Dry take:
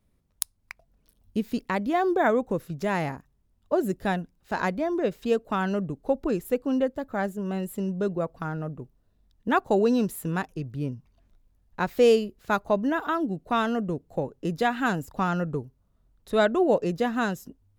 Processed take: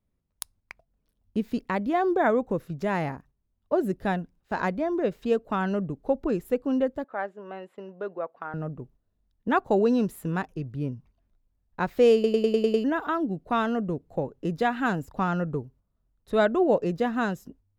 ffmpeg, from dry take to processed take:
-filter_complex "[0:a]asettb=1/sr,asplit=3[a][b][c];[a]atrim=end=3.044[d];[b]atrim=start=3.04:end=4.03,asetpts=PTS-STARTPTS,afade=t=in:d=0.004:c=qsin,afade=t=out:st=0.986:d=0.004:c=qsin,bandreject=f=7.1k:w=13[e];[c]atrim=start=4.026[f];[d][e]acrossfade=d=0.004:c1=hsin:c2=qsin[g];[g][f]acrossfade=d=0.004:c1=qsin:c2=hsin,asettb=1/sr,asplit=3[h][i][j];[h]atrim=end=7.044[k];[i]atrim=start=7.04:end=8.54,asetpts=PTS-STARTPTS,afade=t=in:d=0.004:c=qsin,afade=t=out:st=1.496:d=0.004:c=qsin,highpass=540,lowpass=2.6k[l];[j]atrim=start=8.536[m];[k][l]acrossfade=d=0.004:c1=hsin:c2=qsin[n];[n][m]acrossfade=d=0.004:c1=qsin:c2=hsin,asplit=8[o][p][q][r][s][t][u][v];[o]atrim=end=12.242[w];[p]atrim=start=12.138:end=12.242[x];[q]atrim=start=12.138:end=12.242[y];[r]atrim=start=12.138:end=12.242[z];[s]atrim=start=12.138:end=12.242[aa];[t]atrim=start=12.138:end=12.242[ab];[u]atrim=start=12.138:end=12.242[ac];[v]atrim=start=12.838[ad];[w][x]acrossfade=d=0.004:c1=hsin:c2=hsin[ae];[ae][y]acrossfade=d=0.004:c1=hsin:c2=hsin[af];[af][z]acrossfade=d=0.004:c1=hsin:c2=hsin[ag];[ag][aa]acrossfade=d=0.004:c1=hsin:c2=hsin[ah];[ah][ab]acrossfade=d=0.004:c1=hsin:c2=hsin[ai];[ai][ac]acrossfade=d=0.004:c1=hsin:c2=hsin[aj];[aj][ad]acrossfade=d=0.004:c1=hsin:c2=hsin,agate=range=-8dB:threshold=-52dB:ratio=16:detection=peak,highshelf=f=3.9k:g=-8.5"

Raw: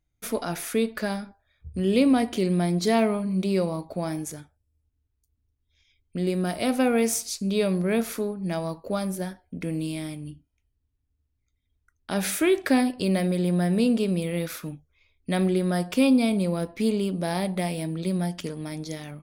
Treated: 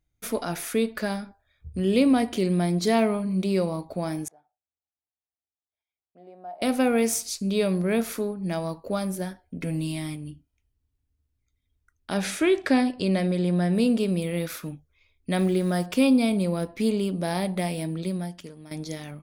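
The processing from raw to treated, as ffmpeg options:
-filter_complex "[0:a]asettb=1/sr,asplit=3[a][b][c];[a]atrim=end=4.284[d];[b]atrim=start=4.28:end=6.62,asetpts=PTS-STARTPTS,afade=t=in:d=0.004:c=qsin,afade=t=out:st=2.336:d=0.004:c=qsin,bandpass=f=750:t=q:w=8.3[e];[c]atrim=start=6.616[f];[d][e]acrossfade=d=0.004:c1=hsin:c2=qsin[g];[g][f]acrossfade=d=0.004:c1=qsin:c2=hsin,asettb=1/sr,asplit=3[h][i][j];[h]atrim=end=9.594[k];[i]atrim=start=9.59:end=10.16,asetpts=PTS-STARTPTS,afade=t=in:d=0.004:c=qsin,afade=t=out:st=0.566:d=0.004:c=qsin,aecho=1:1:7.4:0.65,atrim=end_sample=25137[l];[j]atrim=start=10.156[m];[k][l]acrossfade=d=0.004:c1=hsin:c2=qsin[n];[n][m]acrossfade=d=0.004:c1=qsin:c2=hsin,asettb=1/sr,asplit=3[o][p][q];[o]atrim=end=12.174[r];[p]atrim=start=12.17:end=13.75,asetpts=PTS-STARTPTS,afade=t=in:d=0.004:c=qsin,afade=t=out:st=1.576:d=0.004:c=qsin,lowpass=7.7k[s];[q]atrim=start=13.746[t];[r][s]acrossfade=d=0.004:c1=hsin:c2=qsin[u];[u][t]acrossfade=d=0.004:c1=qsin:c2=hsin,asettb=1/sr,asplit=3[v][w][x];[v]atrim=end=15.384[y];[w]atrim=start=15.38:end=15.86,asetpts=PTS-STARTPTS,afade=t=in:d=0.004:c=qsin,afade=t=out:st=0.476:d=0.004:c=qsin,acrusher=bits=7:mix=0:aa=0.5[z];[x]atrim=start=15.856[aa];[y][z]acrossfade=d=0.004:c1=hsin:c2=qsin[ab];[ab][aa]acrossfade=d=0.004:c1=qsin:c2=hsin,asplit=2[ac][ad];[ac]atrim=end=18.71,asetpts=PTS-STARTPTS,afade=t=out:st=17.97:d=0.74:c=qua:silence=0.266073[ae];[ad]atrim=start=18.71,asetpts=PTS-STARTPTS,afade=t=in:d=0.004:c=hsin:silence=0.266073[af];[ae][af]concat=n=2:v=0:a=1"

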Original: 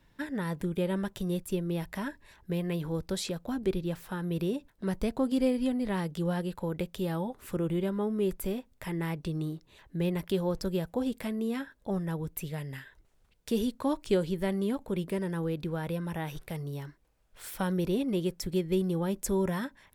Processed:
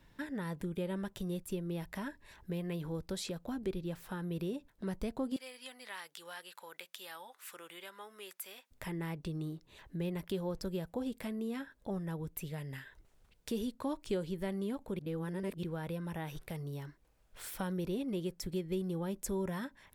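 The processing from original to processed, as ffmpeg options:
-filter_complex "[0:a]asettb=1/sr,asplit=3[a][b][c];[a]atrim=end=5.364[d];[b]atrim=start=5.36:end=8.71,asetpts=PTS-STARTPTS,afade=t=in:d=0.004:c=qsin,afade=t=out:st=3.346:d=0.004:c=qsin,highpass=1.4k[e];[c]atrim=start=8.706[f];[d][e]acrossfade=d=0.004:c1=hsin:c2=qsin[g];[g][f]acrossfade=d=0.004:c1=qsin:c2=hsin,asplit=3[h][i][j];[h]atrim=end=14.992[k];[i]atrim=start=14.988:end=15.632,asetpts=PTS-STARTPTS,areverse[l];[j]atrim=start=15.628[m];[k][l]acrossfade=d=0.004:c1=hsin:c2=hsin[n];[n][m]acrossfade=d=0.004:c1=hsin:c2=hsin,acompressor=threshold=-49dB:ratio=1.5,volume=1dB"

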